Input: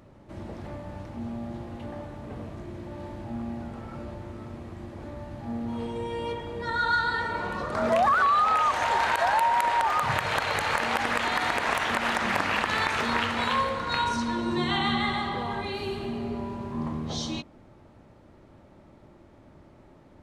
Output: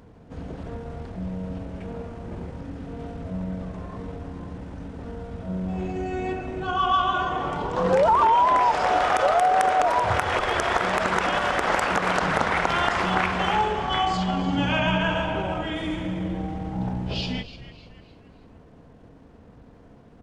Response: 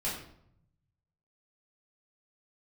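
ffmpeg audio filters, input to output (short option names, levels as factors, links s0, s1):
-filter_complex "[0:a]asplit=5[s0][s1][s2][s3][s4];[s1]adelay=293,afreqshift=-150,volume=0.2[s5];[s2]adelay=586,afreqshift=-300,volume=0.0861[s6];[s3]adelay=879,afreqshift=-450,volume=0.0367[s7];[s4]adelay=1172,afreqshift=-600,volume=0.0158[s8];[s0][s5][s6][s7][s8]amix=inputs=5:normalize=0,asetrate=35002,aresample=44100,atempo=1.25992,volume=1.5"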